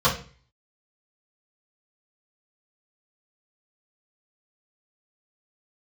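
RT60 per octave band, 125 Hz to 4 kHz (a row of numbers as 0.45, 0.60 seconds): 0.55, 0.40, 0.40, 0.35, 0.40, 0.40 seconds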